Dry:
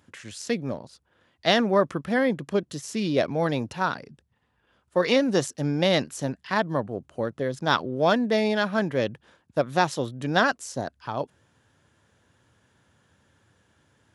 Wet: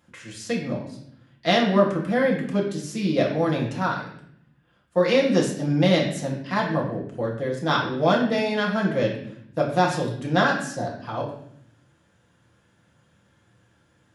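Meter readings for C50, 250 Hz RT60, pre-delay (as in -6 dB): 5.5 dB, 1.1 s, 4 ms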